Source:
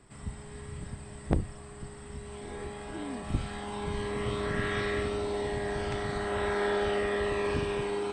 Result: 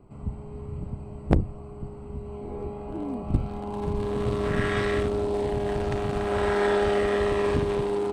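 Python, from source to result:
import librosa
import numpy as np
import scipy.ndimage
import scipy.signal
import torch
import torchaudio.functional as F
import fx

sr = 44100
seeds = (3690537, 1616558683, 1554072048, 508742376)

y = fx.wiener(x, sr, points=25)
y = F.gain(torch.from_numpy(y), 6.5).numpy()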